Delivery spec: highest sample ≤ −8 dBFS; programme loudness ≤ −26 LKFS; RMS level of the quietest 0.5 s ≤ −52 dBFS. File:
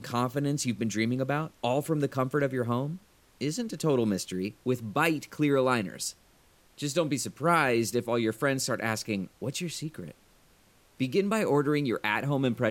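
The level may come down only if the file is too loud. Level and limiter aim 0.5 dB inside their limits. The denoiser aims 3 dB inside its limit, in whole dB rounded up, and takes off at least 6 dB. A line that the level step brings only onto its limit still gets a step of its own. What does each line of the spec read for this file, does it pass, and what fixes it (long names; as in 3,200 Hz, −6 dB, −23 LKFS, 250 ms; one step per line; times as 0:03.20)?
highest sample −10.5 dBFS: in spec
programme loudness −29.0 LKFS: in spec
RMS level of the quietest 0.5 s −61 dBFS: in spec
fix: no processing needed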